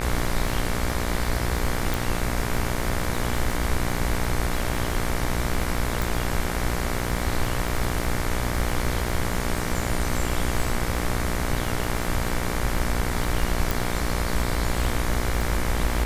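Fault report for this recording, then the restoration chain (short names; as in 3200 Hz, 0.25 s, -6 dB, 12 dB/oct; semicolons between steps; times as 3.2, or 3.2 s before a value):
buzz 60 Hz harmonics 39 -29 dBFS
crackle 30/s -28 dBFS
1.94 pop
6.02 pop
13.71 pop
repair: de-click; de-hum 60 Hz, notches 39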